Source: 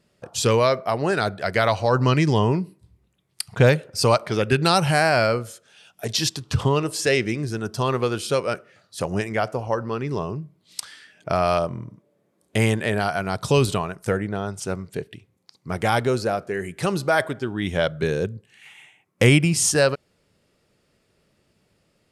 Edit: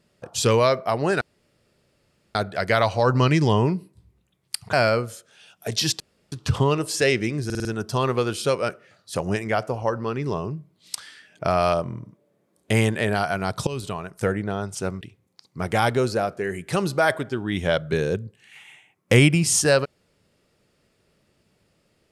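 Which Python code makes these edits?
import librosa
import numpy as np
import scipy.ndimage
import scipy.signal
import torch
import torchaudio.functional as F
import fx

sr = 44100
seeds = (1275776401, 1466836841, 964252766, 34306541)

y = fx.edit(x, sr, fx.insert_room_tone(at_s=1.21, length_s=1.14),
    fx.cut(start_s=3.59, length_s=1.51),
    fx.insert_room_tone(at_s=6.37, length_s=0.32),
    fx.stutter(start_s=7.5, slice_s=0.05, count=5),
    fx.fade_in_from(start_s=13.52, length_s=0.62, floor_db=-17.5),
    fx.cut(start_s=14.86, length_s=0.25), tone=tone)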